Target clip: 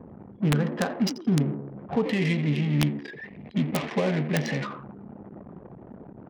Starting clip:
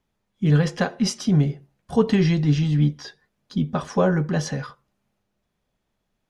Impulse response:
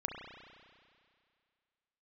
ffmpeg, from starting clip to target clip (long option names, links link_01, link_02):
-filter_complex "[0:a]aeval=exprs='val(0)+0.5*0.0422*sgn(val(0))':channel_layout=same,adynamicsmooth=sensitivity=2.5:basefreq=830,asplit=3[link_01][link_02][link_03];[link_01]afade=type=out:start_time=2.04:duration=0.02[link_04];[link_02]highshelf=frequency=1700:width_type=q:width=3:gain=6,afade=type=in:start_time=2.04:duration=0.02,afade=type=out:start_time=4.64:duration=0.02[link_05];[link_03]afade=type=in:start_time=4.64:duration=0.02[link_06];[link_04][link_05][link_06]amix=inputs=3:normalize=0,alimiter=limit=-12.5dB:level=0:latency=1:release=337,asplit=5[link_07][link_08][link_09][link_10][link_11];[link_08]adelay=86,afreqshift=68,volume=-11.5dB[link_12];[link_09]adelay=172,afreqshift=136,volume=-19.7dB[link_13];[link_10]adelay=258,afreqshift=204,volume=-27.9dB[link_14];[link_11]adelay=344,afreqshift=272,volume=-36dB[link_15];[link_07][link_12][link_13][link_14][link_15]amix=inputs=5:normalize=0,anlmdn=15.8,highpass=140,aeval=exprs='(mod(3.76*val(0)+1,2)-1)/3.76':channel_layout=same,volume=-2dB"